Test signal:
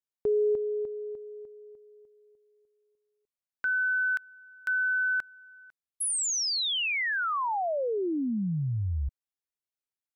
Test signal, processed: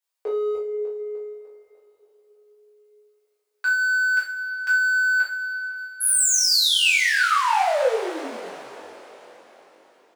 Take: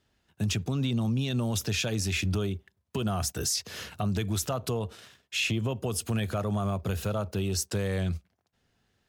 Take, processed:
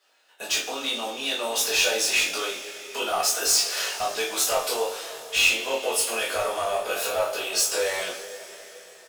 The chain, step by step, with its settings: HPF 520 Hz 24 dB/oct; dynamic EQ 1100 Hz, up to -5 dB, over -49 dBFS, Q 3; in parallel at -3.5 dB: wavefolder -31 dBFS; on the sum: doubler 22 ms -3 dB; two-slope reverb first 0.34 s, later 4.5 s, from -20 dB, DRR -5.5 dB

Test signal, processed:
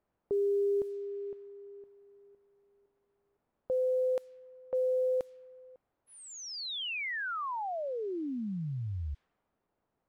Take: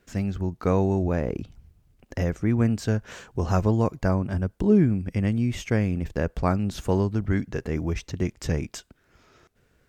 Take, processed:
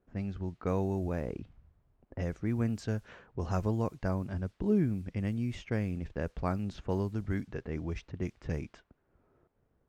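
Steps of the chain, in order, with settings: requantised 10-bit, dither triangular; low-pass opened by the level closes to 780 Hz, open at -19 dBFS; gain -9 dB

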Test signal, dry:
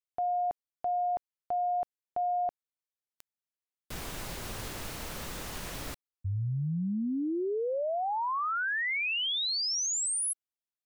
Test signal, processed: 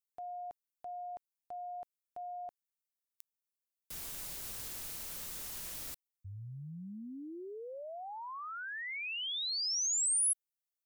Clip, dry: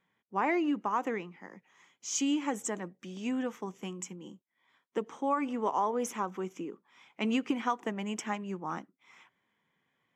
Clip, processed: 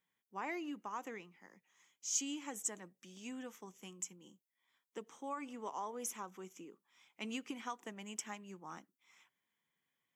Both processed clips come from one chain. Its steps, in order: pre-emphasis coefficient 0.8

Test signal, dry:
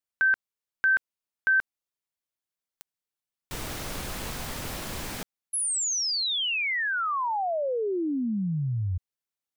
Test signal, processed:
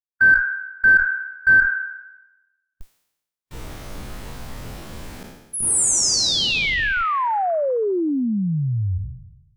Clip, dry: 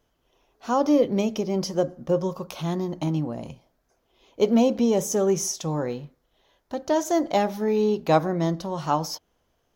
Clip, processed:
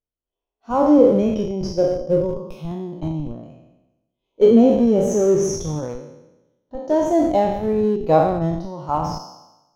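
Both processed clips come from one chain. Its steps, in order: spectral trails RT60 1.50 s; in parallel at -5.5 dB: Schmitt trigger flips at -18 dBFS; on the sum: spectral expander 1.5:1; gain +2 dB

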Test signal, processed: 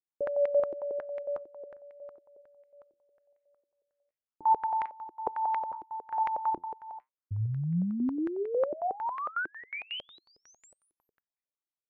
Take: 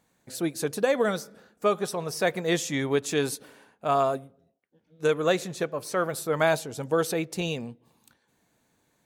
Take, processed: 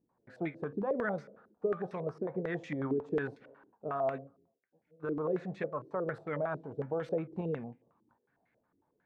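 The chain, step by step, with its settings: limiter -20.5 dBFS; dynamic EQ 160 Hz, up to +6 dB, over -44 dBFS, Q 0.85; flange 0.84 Hz, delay 6.9 ms, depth 5 ms, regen +74%; stepped low-pass 11 Hz 340–2100 Hz; gain -5.5 dB

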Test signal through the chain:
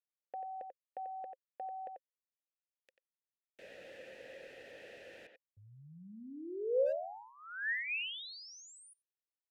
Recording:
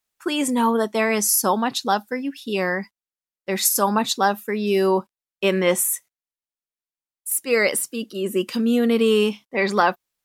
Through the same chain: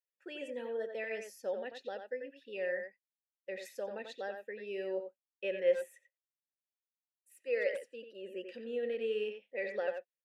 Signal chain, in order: vowel filter e; speakerphone echo 90 ms, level -6 dB; gain -7 dB

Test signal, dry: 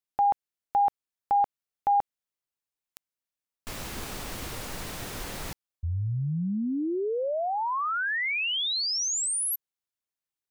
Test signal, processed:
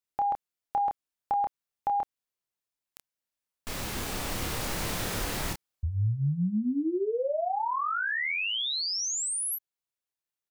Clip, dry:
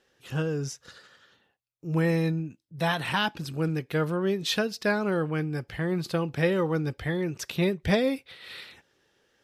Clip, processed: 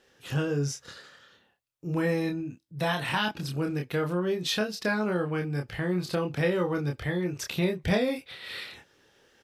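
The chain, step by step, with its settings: vocal rider within 5 dB 2 s; doubler 28 ms -4 dB; compressor 1.5:1, threshold -29 dBFS

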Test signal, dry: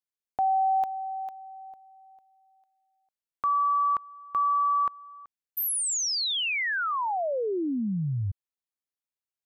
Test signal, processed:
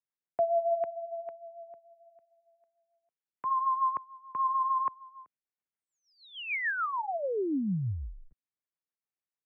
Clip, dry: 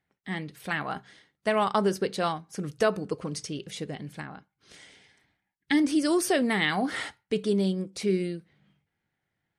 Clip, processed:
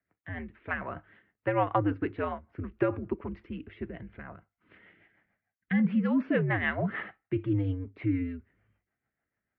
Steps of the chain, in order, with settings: rotary speaker horn 6.7 Hz; mistuned SSB -92 Hz 190–2500 Hz

